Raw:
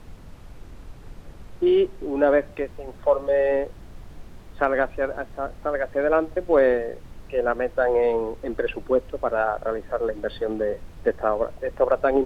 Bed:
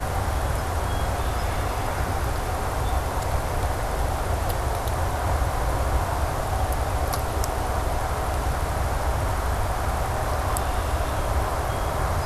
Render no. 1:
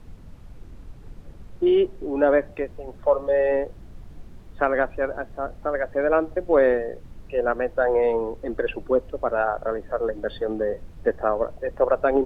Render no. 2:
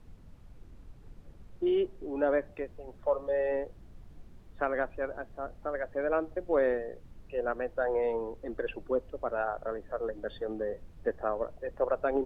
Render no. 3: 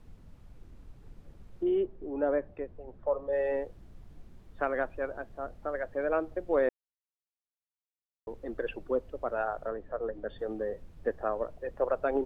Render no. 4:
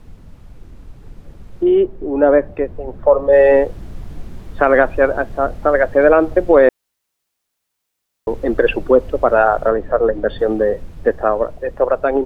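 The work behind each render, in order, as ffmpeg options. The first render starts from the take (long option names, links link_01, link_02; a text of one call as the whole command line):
ffmpeg -i in.wav -af "afftdn=noise_reduction=6:noise_floor=-44" out.wav
ffmpeg -i in.wav -af "volume=-9dB" out.wav
ffmpeg -i in.wav -filter_complex "[0:a]asettb=1/sr,asplit=3[link_01][link_02][link_03];[link_01]atrim=end=1.634[link_04];[link_02]atrim=start=1.63:end=3.33,asetpts=PTS-STARTPTS,afade=type=in:duration=0.004:curve=qsin,afade=type=out:start_time=1.696:duration=0.004:curve=qsin,lowpass=frequency=1100:poles=1[link_05];[link_03]atrim=start=3.326[link_06];[link_04][link_05]acrossfade=duration=0.004:curve1=hsin:curve2=qsin[link_07];[link_07][link_06]acrossfade=duration=0.004:curve1=qsin:curve2=hsin,asettb=1/sr,asplit=3[link_08][link_09][link_10];[link_08]atrim=end=9.694[link_11];[link_09]atrim=start=9.69:end=10.39,asetpts=PTS-STARTPTS,afade=type=in:duration=0.004:curve=qsin,afade=type=out:start_time=0.696:duration=0.004:curve=qsin,lowpass=frequency=2100:poles=1[link_12];[link_10]atrim=start=10.386[link_13];[link_11][link_12]acrossfade=duration=0.004:curve1=hsin:curve2=qsin[link_14];[link_14][link_13]acrossfade=duration=0.004:curve1=qsin:curve2=hsin,asplit=3[link_15][link_16][link_17];[link_15]atrim=end=6.69,asetpts=PTS-STARTPTS,afade=type=out:start_time=6.686:duration=0.004:curve=hsin[link_18];[link_16]atrim=start=6.69:end=8.27,asetpts=PTS-STARTPTS,volume=0[link_19];[link_17]atrim=start=8.27,asetpts=PTS-STARTPTS,afade=type=in:duration=0.004:curve=hsin[link_20];[link_18][link_19][link_20]concat=n=3:v=0:a=1" out.wav
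ffmpeg -i in.wav -af "dynaudnorm=framelen=700:gausssize=7:maxgain=8dB,alimiter=level_in=12.5dB:limit=-1dB:release=50:level=0:latency=1" out.wav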